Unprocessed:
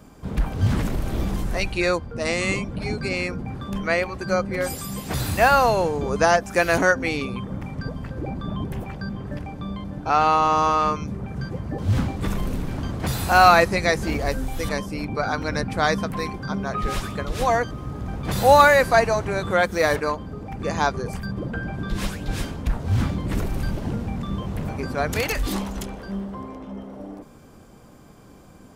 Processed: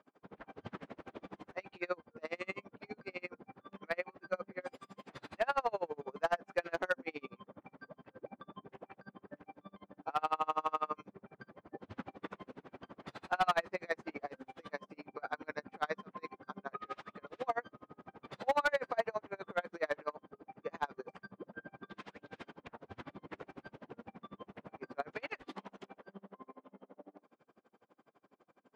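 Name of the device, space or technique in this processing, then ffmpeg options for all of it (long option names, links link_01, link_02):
helicopter radio: -af "highpass=350,lowpass=2500,aeval=exprs='val(0)*pow(10,-35*(0.5-0.5*cos(2*PI*12*n/s))/20)':channel_layout=same,asoftclip=type=hard:threshold=-14.5dB,volume=-8.5dB"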